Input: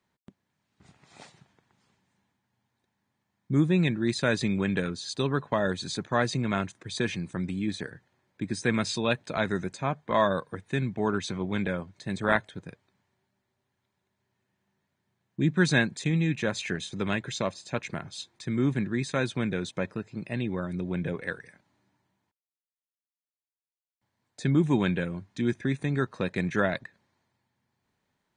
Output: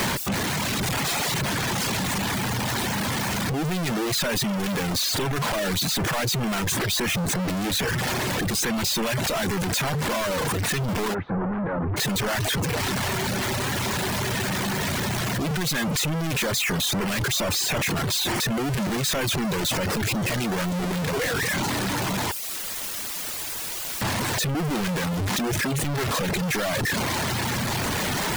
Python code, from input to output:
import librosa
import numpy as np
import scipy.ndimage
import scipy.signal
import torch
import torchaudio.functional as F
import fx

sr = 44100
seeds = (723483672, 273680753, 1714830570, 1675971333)

y = np.sign(x) * np.sqrt(np.mean(np.square(x)))
y = fx.dereverb_blind(y, sr, rt60_s=0.68)
y = fx.lowpass(y, sr, hz=1500.0, slope=24, at=(11.13, 11.96), fade=0.02)
y = y * librosa.db_to_amplitude(7.0)